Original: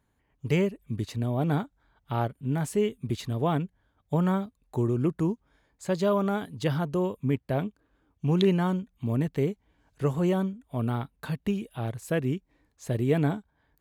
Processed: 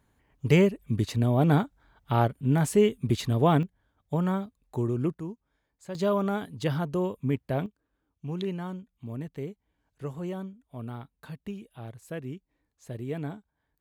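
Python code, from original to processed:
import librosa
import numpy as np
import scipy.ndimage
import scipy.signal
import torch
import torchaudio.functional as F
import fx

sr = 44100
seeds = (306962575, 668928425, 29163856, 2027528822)

y = fx.gain(x, sr, db=fx.steps((0.0, 4.5), (3.63, -2.0), (5.14, -10.0), (5.95, -1.0), (7.66, -9.5)))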